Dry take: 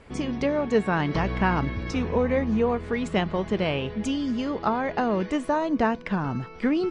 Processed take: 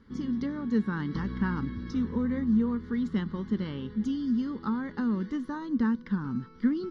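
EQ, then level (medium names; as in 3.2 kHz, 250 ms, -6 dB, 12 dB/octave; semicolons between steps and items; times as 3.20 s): peaking EQ 230 Hz +12 dB 0.66 oct; static phaser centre 2.5 kHz, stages 6; -8.5 dB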